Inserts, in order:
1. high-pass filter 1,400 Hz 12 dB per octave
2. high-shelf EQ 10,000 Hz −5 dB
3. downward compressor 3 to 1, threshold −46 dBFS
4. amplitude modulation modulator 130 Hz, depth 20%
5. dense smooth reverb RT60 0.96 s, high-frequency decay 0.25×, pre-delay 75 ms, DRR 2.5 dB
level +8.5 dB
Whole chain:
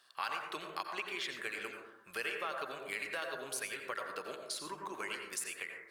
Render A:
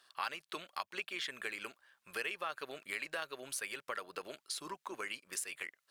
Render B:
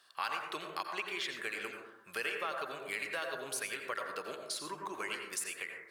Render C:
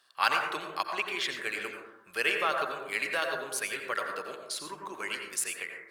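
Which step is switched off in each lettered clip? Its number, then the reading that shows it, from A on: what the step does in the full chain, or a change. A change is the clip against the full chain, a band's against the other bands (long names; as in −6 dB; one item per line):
5, change in crest factor +1.5 dB
4, change in integrated loudness +1.5 LU
3, average gain reduction 6.0 dB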